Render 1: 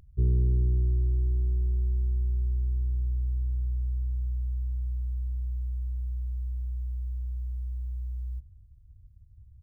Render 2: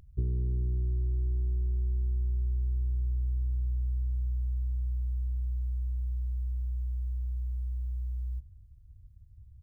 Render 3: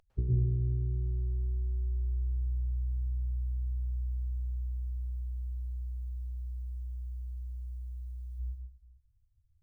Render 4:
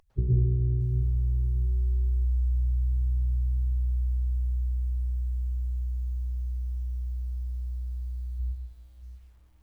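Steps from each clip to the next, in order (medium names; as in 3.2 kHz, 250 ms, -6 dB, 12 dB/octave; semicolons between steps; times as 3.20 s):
compression, threshold -26 dBFS, peak gain reduction 7 dB
expander on every frequency bin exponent 2; plate-style reverb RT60 1 s, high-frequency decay 0.85×, pre-delay 95 ms, DRR -3.5 dB
coarse spectral quantiser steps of 15 dB; bit-crushed delay 633 ms, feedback 35%, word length 10-bit, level -14.5 dB; trim +5 dB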